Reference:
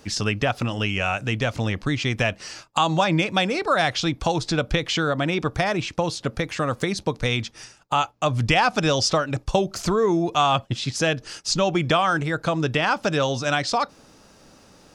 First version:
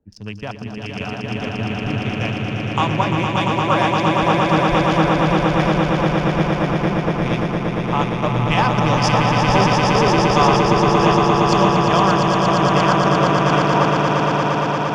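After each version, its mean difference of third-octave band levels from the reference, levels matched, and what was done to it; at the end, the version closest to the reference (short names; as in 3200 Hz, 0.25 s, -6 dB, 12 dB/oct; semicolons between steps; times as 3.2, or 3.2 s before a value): 11.5 dB: Wiener smoothing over 41 samples; thirty-one-band EQ 200 Hz +5 dB, 1000 Hz +7 dB, 4000 Hz -7 dB, 8000 Hz -9 dB; on a send: swelling echo 0.116 s, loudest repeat 8, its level -4 dB; on the sum: three-band expander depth 70%; gain -1 dB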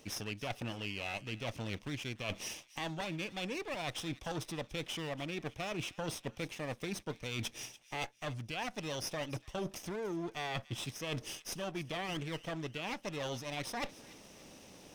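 8.0 dB: minimum comb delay 0.33 ms; low shelf 150 Hz -7 dB; reverse; compressor 16:1, threshold -34 dBFS, peak gain reduction 20.5 dB; reverse; thin delay 0.289 s, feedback 39%, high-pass 1700 Hz, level -17 dB; gain -1.5 dB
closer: second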